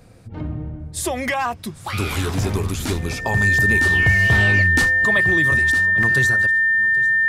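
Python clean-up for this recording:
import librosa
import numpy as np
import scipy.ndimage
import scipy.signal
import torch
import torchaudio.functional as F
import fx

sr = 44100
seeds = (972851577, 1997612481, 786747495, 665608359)

y = fx.notch(x, sr, hz=1800.0, q=30.0)
y = fx.fix_interpolate(y, sr, at_s=(1.28, 6.03), length_ms=2.4)
y = fx.fix_echo_inverse(y, sr, delay_ms=798, level_db=-20.0)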